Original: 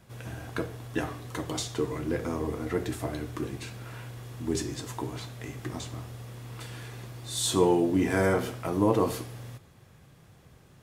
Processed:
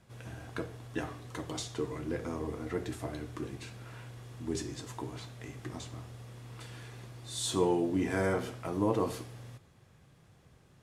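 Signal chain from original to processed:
low-pass filter 11,000 Hz 12 dB per octave
level −5.5 dB

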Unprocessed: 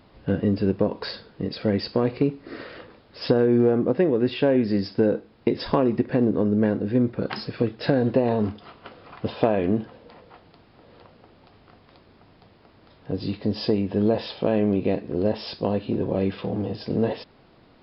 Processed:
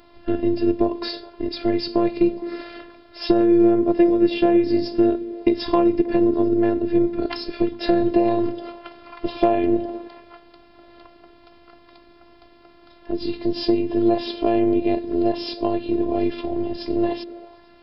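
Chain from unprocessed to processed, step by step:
echo through a band-pass that steps 105 ms, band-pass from 180 Hz, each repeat 0.7 octaves, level −10 dB
phases set to zero 344 Hz
dynamic equaliser 1,500 Hz, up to −5 dB, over −46 dBFS, Q 1.3
level +6 dB

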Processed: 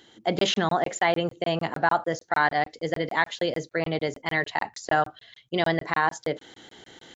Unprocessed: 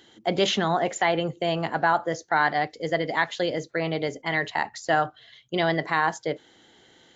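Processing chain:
reversed playback
upward compression, threshold −40 dBFS
reversed playback
regular buffer underruns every 0.15 s, samples 1,024, zero, from 0:00.39

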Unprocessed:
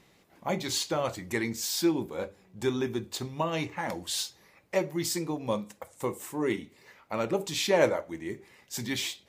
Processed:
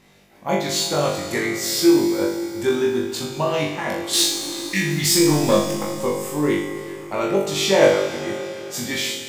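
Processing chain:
0:04.14–0:05.03: healed spectral selection 250–1,600 Hz after
0:04.13–0:05.90: leveller curve on the samples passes 2
flutter between parallel walls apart 3.5 metres, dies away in 0.54 s
four-comb reverb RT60 3.6 s, combs from 26 ms, DRR 7 dB
level +4 dB

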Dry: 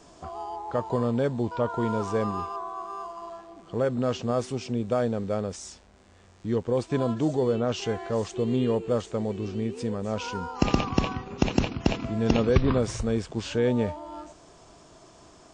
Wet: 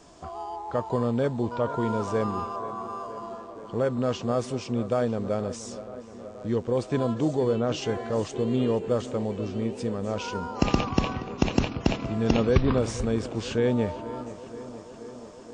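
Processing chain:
tape delay 476 ms, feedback 83%, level −14 dB, low-pass 2,600 Hz

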